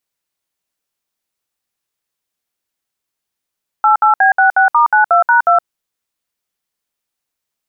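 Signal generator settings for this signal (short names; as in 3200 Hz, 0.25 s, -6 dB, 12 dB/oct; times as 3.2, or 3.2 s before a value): DTMF "88B66*92#2", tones 0.118 s, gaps 63 ms, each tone -9.5 dBFS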